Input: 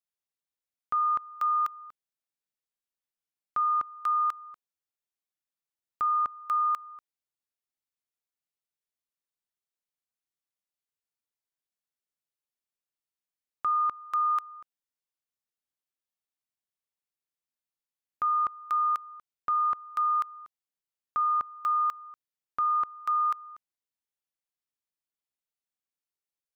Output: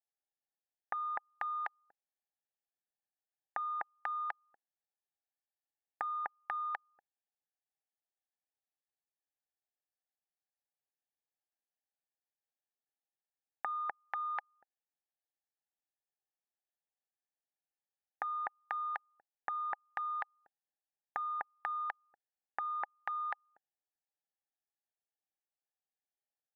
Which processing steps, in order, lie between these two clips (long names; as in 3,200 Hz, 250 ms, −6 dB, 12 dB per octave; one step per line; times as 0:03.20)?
adaptive Wiener filter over 41 samples
pair of resonant band-passes 1,200 Hz, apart 1.1 octaves
high-frequency loss of the air 140 metres
level +16 dB